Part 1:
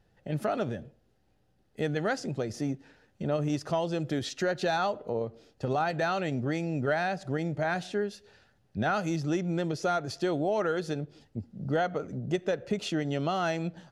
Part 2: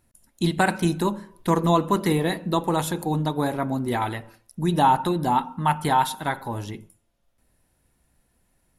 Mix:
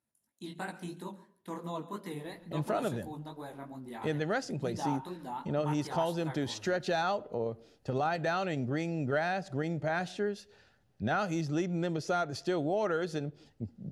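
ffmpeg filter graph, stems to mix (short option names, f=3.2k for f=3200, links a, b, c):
-filter_complex "[0:a]adelay=2250,volume=-2.5dB[a];[1:a]highpass=130,flanger=delay=15.5:depth=6.6:speed=2.9,volume=-15.5dB,asplit=2[b][c];[c]volume=-18.5dB,aecho=0:1:138:1[d];[a][b][d]amix=inputs=3:normalize=0"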